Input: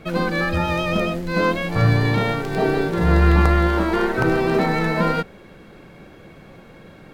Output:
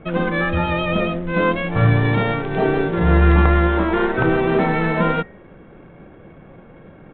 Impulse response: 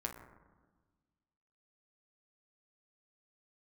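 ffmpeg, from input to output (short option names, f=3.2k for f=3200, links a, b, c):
-af "adynamicsmooth=sensitivity=7:basefreq=1.4k,aresample=8000,aresample=44100,bandreject=f=208.2:t=h:w=4,bandreject=f=416.4:t=h:w=4,bandreject=f=624.6:t=h:w=4,bandreject=f=832.8:t=h:w=4,bandreject=f=1.041k:t=h:w=4,bandreject=f=1.2492k:t=h:w=4,bandreject=f=1.4574k:t=h:w=4,bandreject=f=1.6656k:t=h:w=4,bandreject=f=1.8738k:t=h:w=4,bandreject=f=2.082k:t=h:w=4,bandreject=f=2.2902k:t=h:w=4,volume=1.5dB"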